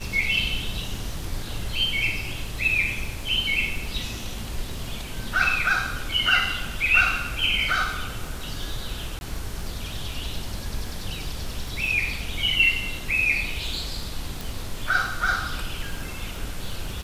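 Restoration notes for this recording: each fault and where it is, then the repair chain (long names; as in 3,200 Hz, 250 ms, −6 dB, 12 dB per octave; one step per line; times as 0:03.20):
surface crackle 38 per second −34 dBFS
0:09.19–0:09.21: drop-out 21 ms
0:14.41: click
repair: click removal
repair the gap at 0:09.19, 21 ms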